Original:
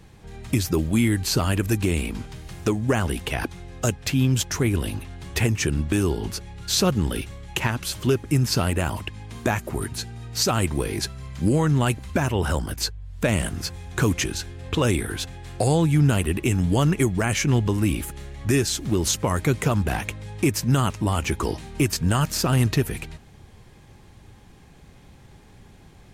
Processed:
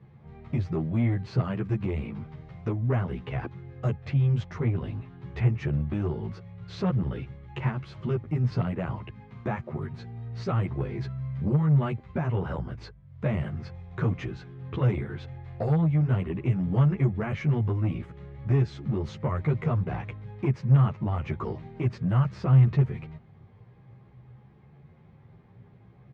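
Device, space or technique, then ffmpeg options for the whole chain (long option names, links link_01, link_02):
barber-pole flanger into a guitar amplifier: -filter_complex "[0:a]equalizer=frequency=2800:width=0.47:gain=-14,asplit=2[link_01][link_02];[link_02]adelay=11.5,afreqshift=0.53[link_03];[link_01][link_03]amix=inputs=2:normalize=1,asoftclip=type=tanh:threshold=-18dB,highpass=92,equalizer=frequency=130:width_type=q:width=4:gain=9,equalizer=frequency=290:width_type=q:width=4:gain=-8,equalizer=frequency=1200:width_type=q:width=4:gain=5,equalizer=frequency=2100:width_type=q:width=4:gain=7,lowpass=frequency=3500:width=0.5412,lowpass=frequency=3500:width=1.3066"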